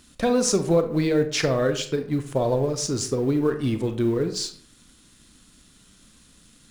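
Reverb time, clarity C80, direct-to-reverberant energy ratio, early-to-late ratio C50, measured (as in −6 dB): 0.55 s, 14.5 dB, 8.0 dB, 11.0 dB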